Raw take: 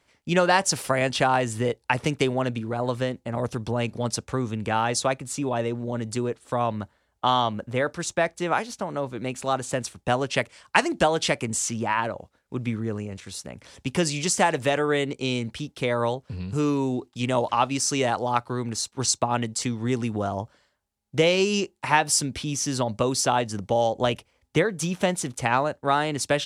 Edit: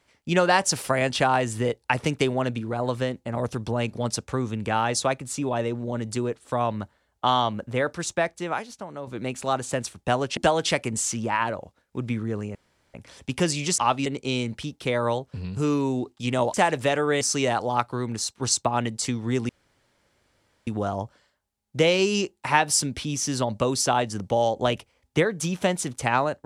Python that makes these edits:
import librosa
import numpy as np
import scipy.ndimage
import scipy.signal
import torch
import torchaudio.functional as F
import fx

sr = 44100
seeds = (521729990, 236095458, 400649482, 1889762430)

y = fx.edit(x, sr, fx.fade_out_to(start_s=8.12, length_s=0.95, curve='qua', floor_db=-7.5),
    fx.cut(start_s=10.37, length_s=0.57),
    fx.room_tone_fill(start_s=13.12, length_s=0.39),
    fx.swap(start_s=14.35, length_s=0.67, other_s=17.5, other_length_s=0.28),
    fx.insert_room_tone(at_s=20.06, length_s=1.18), tone=tone)